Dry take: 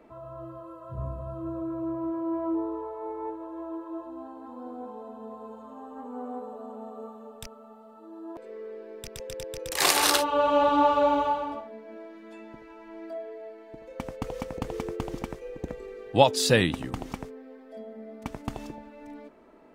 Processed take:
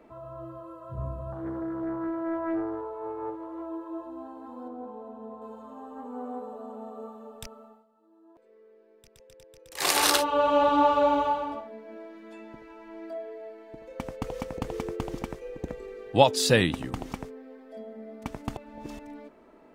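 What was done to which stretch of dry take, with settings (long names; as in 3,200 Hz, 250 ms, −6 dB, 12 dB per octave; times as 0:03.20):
0:01.32–0:03.66: highs frequency-modulated by the lows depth 0.39 ms
0:04.68–0:05.42: high-shelf EQ 2,300 Hz −10.5 dB
0:07.60–0:09.97: duck −16.5 dB, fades 0.26 s
0:18.57–0:18.99: reverse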